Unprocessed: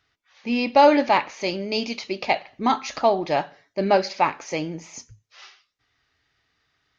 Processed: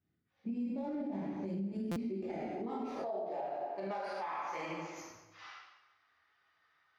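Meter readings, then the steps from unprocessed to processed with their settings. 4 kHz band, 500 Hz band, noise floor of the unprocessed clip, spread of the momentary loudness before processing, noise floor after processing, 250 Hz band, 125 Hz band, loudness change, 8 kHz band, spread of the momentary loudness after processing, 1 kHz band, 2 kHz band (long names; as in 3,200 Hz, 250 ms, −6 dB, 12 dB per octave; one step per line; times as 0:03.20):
−25.5 dB, −18.0 dB, −75 dBFS, 17 LU, −80 dBFS, −11.5 dB, −9.0 dB, −17.0 dB, can't be measured, 13 LU, −19.5 dB, −20.0 dB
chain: stylus tracing distortion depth 0.097 ms
parametric band 920 Hz −7 dB 2.1 octaves
band-pass filter sweep 210 Hz → 1,100 Hz, 0:01.86–0:03.93
dense smooth reverb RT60 1.1 s, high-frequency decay 0.85×, DRR −8.5 dB
downward compressor 4 to 1, threshold −36 dBFS, peak gain reduction 18 dB
brickwall limiter −32 dBFS, peak gain reduction 7 dB
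buffer that repeats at 0:01.91, samples 256, times 8
level +1 dB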